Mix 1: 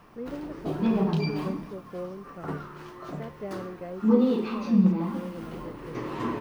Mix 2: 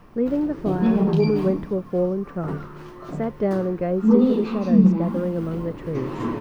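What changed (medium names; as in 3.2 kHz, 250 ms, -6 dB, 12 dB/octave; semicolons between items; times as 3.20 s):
speech +11.0 dB; master: add bass shelf 440 Hz +6.5 dB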